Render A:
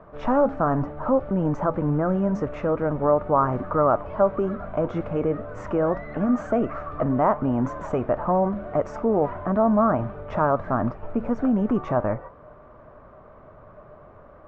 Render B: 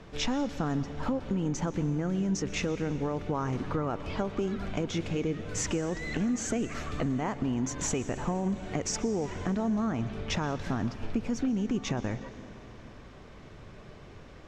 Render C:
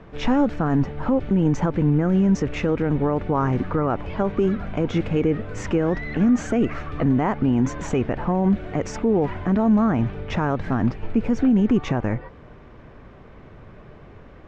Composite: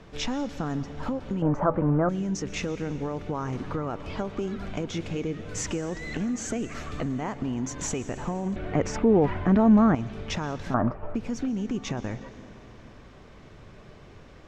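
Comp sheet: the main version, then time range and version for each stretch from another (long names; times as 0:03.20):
B
0:01.42–0:02.09: punch in from A
0:08.56–0:09.95: punch in from C
0:10.74–0:11.15: punch in from A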